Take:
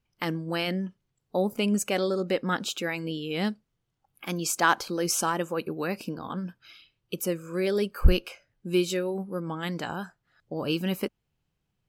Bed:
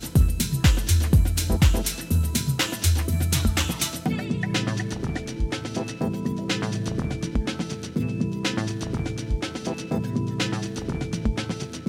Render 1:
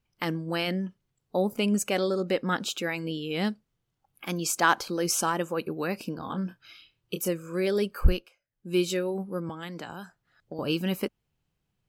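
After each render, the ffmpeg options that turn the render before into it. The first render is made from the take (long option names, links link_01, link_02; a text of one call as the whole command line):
ffmpeg -i in.wav -filter_complex "[0:a]asettb=1/sr,asplit=3[link_01][link_02][link_03];[link_01]atrim=end=6.174[link_04];[link_02]atrim=start=6.17:end=7.29,asetpts=PTS-STARTPTS,afade=type=in:duration=0.004:curve=qsin,afade=type=out:start_time=1.116:duration=0.004:curve=qsin,asplit=2[link_05][link_06];[link_06]adelay=26,volume=-7dB[link_07];[link_05][link_07]amix=inputs=2:normalize=0,atrim=end_sample=49392[link_08];[link_03]atrim=start=7.286[link_09];[link_04][link_08]acrossfade=duration=0.004:curve1=hsin:curve2=qsin[link_10];[link_10][link_09]acrossfade=duration=0.004:curve1=qsin:curve2=hsin,asettb=1/sr,asplit=3[link_11][link_12][link_13];[link_11]atrim=end=9.494[link_14];[link_12]atrim=start=9.49:end=10.59,asetpts=PTS-STARTPTS,afade=type=in:duration=0.004:curve=qsin,afade=type=out:start_time=1.096:duration=0.004:curve=qsin,acrossover=split=180|3100[link_15][link_16][link_17];[link_15]acompressor=threshold=-50dB:ratio=4[link_18];[link_16]acompressor=threshold=-37dB:ratio=4[link_19];[link_17]acompressor=threshold=-49dB:ratio=4[link_20];[link_18][link_19][link_20]amix=inputs=3:normalize=0[link_21];[link_13]atrim=start=10.586[link_22];[link_14][link_21]acrossfade=duration=0.004:curve1=hsin:curve2=qsin[link_23];[link_23][link_22]acrossfade=duration=0.004:curve1=qsin:curve2=hsin,asplit=3[link_24][link_25][link_26];[link_24]atrim=end=8.3,asetpts=PTS-STARTPTS,afade=type=out:start_time=7.99:duration=0.31:silence=0.1[link_27];[link_25]atrim=start=8.3:end=8.5,asetpts=PTS-STARTPTS,volume=-20dB[link_28];[link_26]atrim=start=8.5,asetpts=PTS-STARTPTS,afade=type=in:duration=0.31:silence=0.1[link_29];[link_27][link_28][link_29]concat=n=3:v=0:a=1" out.wav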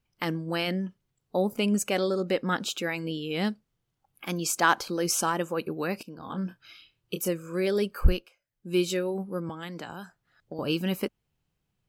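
ffmpeg -i in.wav -filter_complex "[0:a]asplit=2[link_01][link_02];[link_01]atrim=end=6.03,asetpts=PTS-STARTPTS,afade=type=out:start_time=6.026:duration=0.004:curve=hsin:silence=0.177828[link_03];[link_02]atrim=start=6.03,asetpts=PTS-STARTPTS,afade=type=in:duration=0.41:silence=0.177828[link_04];[link_03][link_04]concat=n=2:v=0:a=1" out.wav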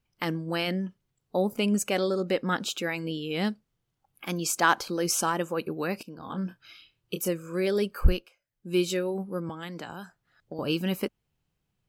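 ffmpeg -i in.wav -af anull out.wav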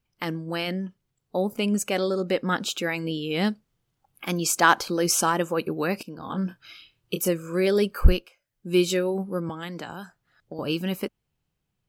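ffmpeg -i in.wav -af "dynaudnorm=framelen=380:gausssize=13:maxgain=5dB" out.wav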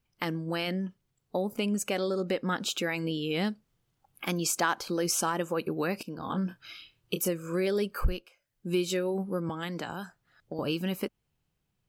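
ffmpeg -i in.wav -af "acompressor=threshold=-28dB:ratio=2.5" out.wav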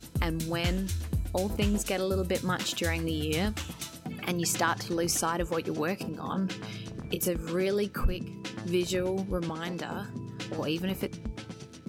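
ffmpeg -i in.wav -i bed.wav -filter_complex "[1:a]volume=-13dB[link_01];[0:a][link_01]amix=inputs=2:normalize=0" out.wav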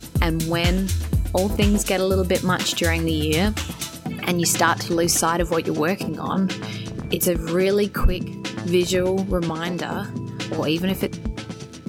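ffmpeg -i in.wav -af "volume=9dB" out.wav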